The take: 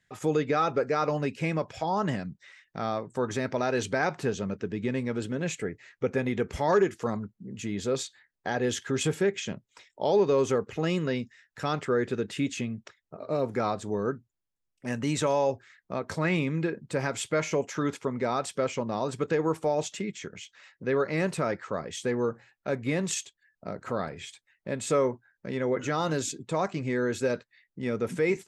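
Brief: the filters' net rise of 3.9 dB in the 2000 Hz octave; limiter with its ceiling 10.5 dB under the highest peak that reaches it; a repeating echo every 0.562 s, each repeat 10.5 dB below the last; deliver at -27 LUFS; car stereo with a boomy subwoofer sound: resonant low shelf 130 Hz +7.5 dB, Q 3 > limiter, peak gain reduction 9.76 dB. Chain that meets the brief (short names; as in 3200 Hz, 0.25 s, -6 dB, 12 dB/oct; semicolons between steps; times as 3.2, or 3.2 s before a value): bell 2000 Hz +5 dB; limiter -22 dBFS; resonant low shelf 130 Hz +7.5 dB, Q 3; feedback echo 0.562 s, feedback 30%, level -10.5 dB; gain +8.5 dB; limiter -17 dBFS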